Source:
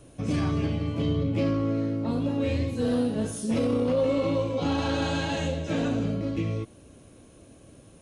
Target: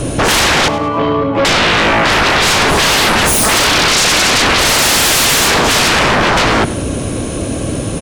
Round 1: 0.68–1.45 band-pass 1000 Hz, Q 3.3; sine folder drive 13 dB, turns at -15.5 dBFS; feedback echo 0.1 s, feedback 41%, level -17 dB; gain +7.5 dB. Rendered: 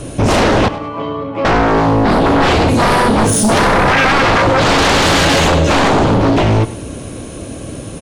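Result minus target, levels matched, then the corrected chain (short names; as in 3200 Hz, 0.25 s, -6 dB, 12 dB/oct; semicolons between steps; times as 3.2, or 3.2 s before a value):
sine folder: distortion -28 dB
0.68–1.45 band-pass 1000 Hz, Q 3.3; sine folder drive 22 dB, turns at -15.5 dBFS; feedback echo 0.1 s, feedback 41%, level -17 dB; gain +7.5 dB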